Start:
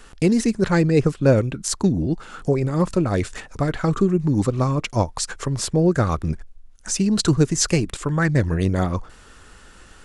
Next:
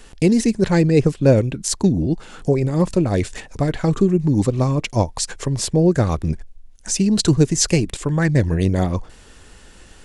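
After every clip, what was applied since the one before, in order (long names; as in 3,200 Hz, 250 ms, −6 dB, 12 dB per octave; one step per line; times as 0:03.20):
parametric band 1,300 Hz −9 dB 0.57 octaves
level +2.5 dB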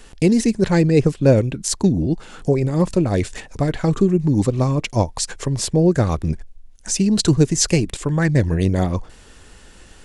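no processing that can be heard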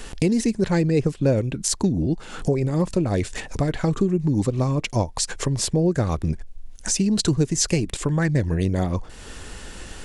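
downward compressor 2 to 1, threshold −35 dBFS, peak gain reduction 14.5 dB
level +7.5 dB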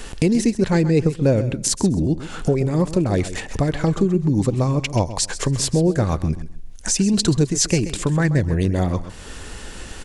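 repeating echo 131 ms, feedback 22%, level −13.5 dB
level +2.5 dB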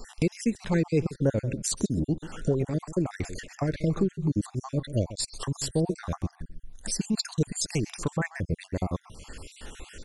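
time-frequency cells dropped at random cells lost 50%
level −6.5 dB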